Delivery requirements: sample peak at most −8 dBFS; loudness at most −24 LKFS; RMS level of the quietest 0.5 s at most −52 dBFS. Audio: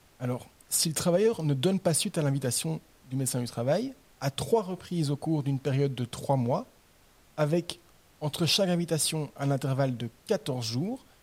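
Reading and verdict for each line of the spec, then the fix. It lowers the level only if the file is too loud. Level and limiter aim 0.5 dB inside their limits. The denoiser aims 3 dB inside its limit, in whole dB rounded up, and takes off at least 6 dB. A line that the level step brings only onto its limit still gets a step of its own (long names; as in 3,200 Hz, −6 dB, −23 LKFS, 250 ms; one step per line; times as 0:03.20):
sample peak −11.0 dBFS: in spec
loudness −29.0 LKFS: in spec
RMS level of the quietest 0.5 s −60 dBFS: in spec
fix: no processing needed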